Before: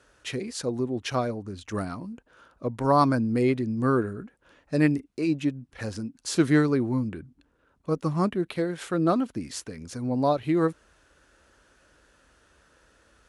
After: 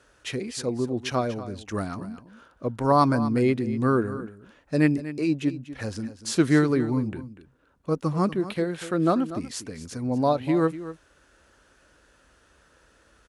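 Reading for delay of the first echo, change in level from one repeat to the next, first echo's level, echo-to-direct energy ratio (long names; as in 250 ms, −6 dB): 242 ms, repeats not evenly spaced, −14.0 dB, −14.0 dB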